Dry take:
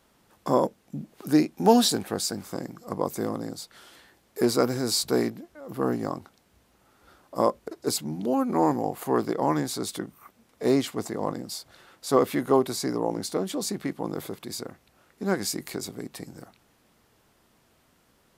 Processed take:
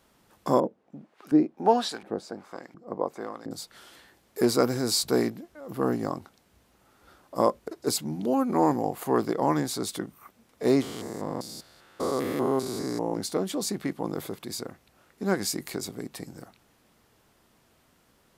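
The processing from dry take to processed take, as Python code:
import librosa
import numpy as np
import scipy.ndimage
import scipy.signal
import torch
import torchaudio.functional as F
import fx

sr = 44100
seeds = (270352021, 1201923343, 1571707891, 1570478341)

y = fx.filter_lfo_bandpass(x, sr, shape='saw_up', hz=1.4, low_hz=270.0, high_hz=2200.0, q=0.8, at=(0.6, 3.51))
y = fx.spec_steps(y, sr, hold_ms=200, at=(10.82, 13.14))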